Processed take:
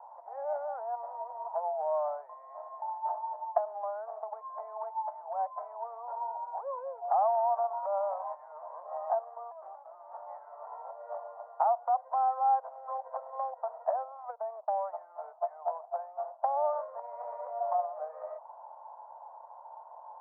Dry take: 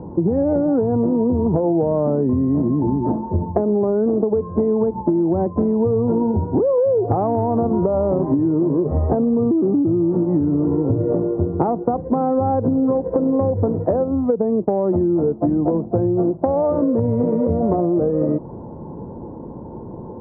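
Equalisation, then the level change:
Butterworth high-pass 650 Hz 72 dB per octave
low-pass filter 1,400 Hz 12 dB per octave
high-frequency loss of the air 150 metres
−2.0 dB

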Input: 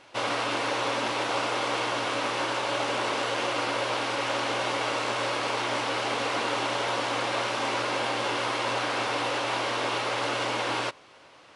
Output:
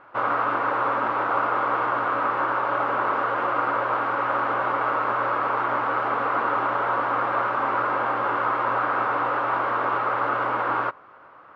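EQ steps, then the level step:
low-pass with resonance 1,300 Hz, resonance Q 3.6
0.0 dB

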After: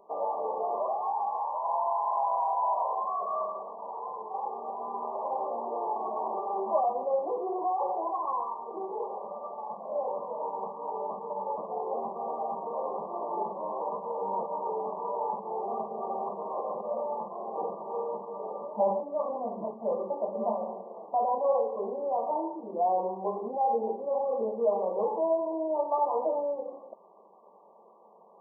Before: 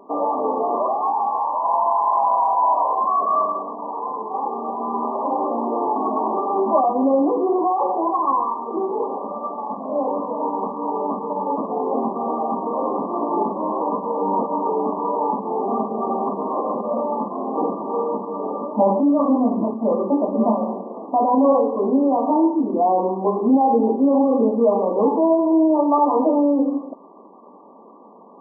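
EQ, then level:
phaser with its sweep stopped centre 660 Hz, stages 4
−8.0 dB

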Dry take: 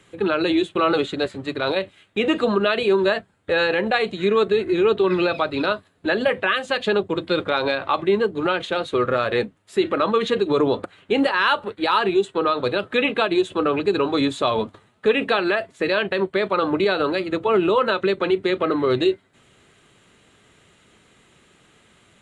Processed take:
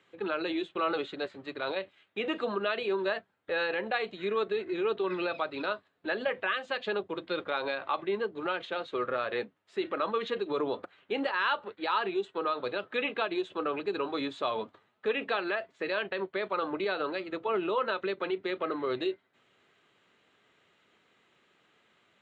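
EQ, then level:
high-pass filter 480 Hz 6 dB per octave
high-frequency loss of the air 140 metres
−8.0 dB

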